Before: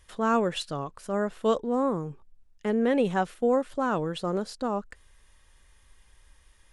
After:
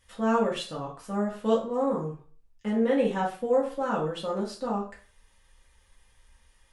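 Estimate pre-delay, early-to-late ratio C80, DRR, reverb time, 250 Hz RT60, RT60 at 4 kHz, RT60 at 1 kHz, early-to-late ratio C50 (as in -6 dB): 3 ms, 13.0 dB, -4.5 dB, 0.40 s, 0.40 s, 0.35 s, 0.40 s, 8.0 dB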